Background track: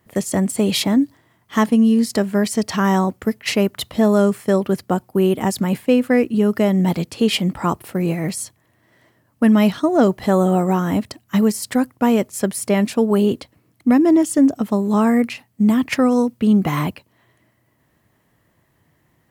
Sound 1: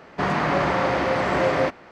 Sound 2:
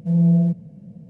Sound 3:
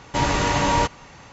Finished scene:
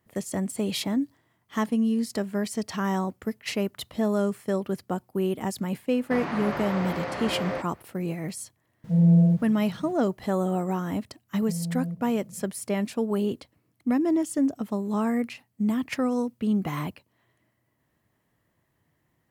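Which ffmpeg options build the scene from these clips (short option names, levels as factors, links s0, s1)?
-filter_complex "[2:a]asplit=2[s0][s1];[0:a]volume=0.316[s2];[s0]aeval=exprs='val(0)*gte(abs(val(0)),0.00422)':c=same[s3];[s1]acompressor=threshold=0.0794:ratio=6:attack=3.2:release=140:knee=1:detection=peak[s4];[1:a]atrim=end=1.91,asetpts=PTS-STARTPTS,volume=0.316,afade=t=in:d=0.004:c=hsin,afade=t=out:st=1.906:d=0.004:c=hsin,adelay=5920[s5];[s3]atrim=end=1.09,asetpts=PTS-STARTPTS,volume=0.841,afade=t=in:d=0.004:c=hsin,afade=t=out:st=1.086:d=0.004:c=hsin,adelay=8840[s6];[s4]atrim=end=1.09,asetpts=PTS-STARTPTS,volume=0.447,afade=t=in:d=0.004:c=hsin,afade=t=out:st=1.086:d=0.004:c=hsin,adelay=11420[s7];[s2][s5][s6][s7]amix=inputs=4:normalize=0"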